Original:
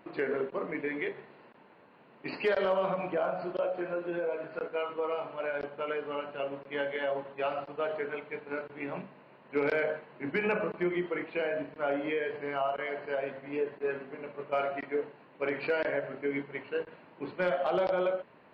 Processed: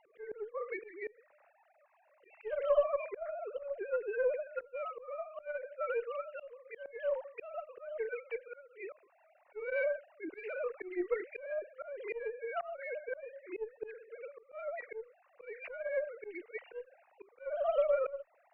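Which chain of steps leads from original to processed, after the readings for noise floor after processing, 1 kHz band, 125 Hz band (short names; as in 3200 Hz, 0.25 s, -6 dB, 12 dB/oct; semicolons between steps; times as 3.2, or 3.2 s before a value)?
-69 dBFS, -9.0 dB, under -30 dB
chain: sine-wave speech; added harmonics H 2 -19 dB, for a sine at -16 dBFS; auto swell 0.317 s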